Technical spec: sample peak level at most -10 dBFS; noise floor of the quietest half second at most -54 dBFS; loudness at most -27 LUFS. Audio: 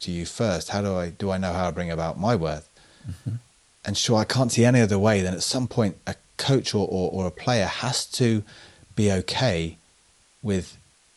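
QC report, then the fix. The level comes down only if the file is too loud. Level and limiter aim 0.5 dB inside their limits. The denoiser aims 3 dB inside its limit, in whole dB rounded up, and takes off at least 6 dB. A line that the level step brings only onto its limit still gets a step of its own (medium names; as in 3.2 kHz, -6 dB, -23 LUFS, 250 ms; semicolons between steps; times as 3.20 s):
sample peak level -6.5 dBFS: fail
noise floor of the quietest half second -60 dBFS: pass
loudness -24.5 LUFS: fail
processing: trim -3 dB; peak limiter -10.5 dBFS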